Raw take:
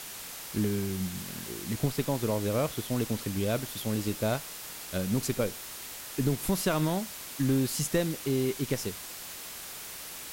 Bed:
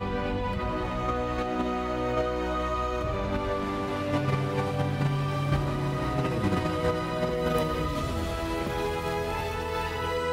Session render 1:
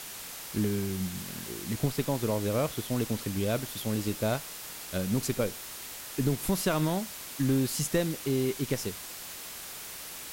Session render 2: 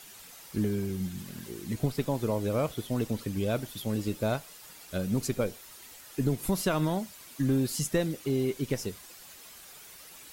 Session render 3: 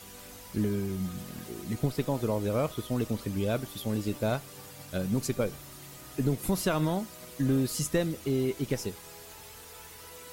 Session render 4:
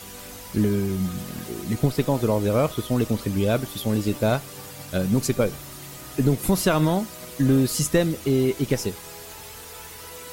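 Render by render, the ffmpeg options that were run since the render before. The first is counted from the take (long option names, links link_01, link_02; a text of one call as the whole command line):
ffmpeg -i in.wav -af anull out.wav
ffmpeg -i in.wav -af "afftdn=noise_reduction=10:noise_floor=-42" out.wav
ffmpeg -i in.wav -i bed.wav -filter_complex "[1:a]volume=-22dB[link_01];[0:a][link_01]amix=inputs=2:normalize=0" out.wav
ffmpeg -i in.wav -af "volume=7.5dB" out.wav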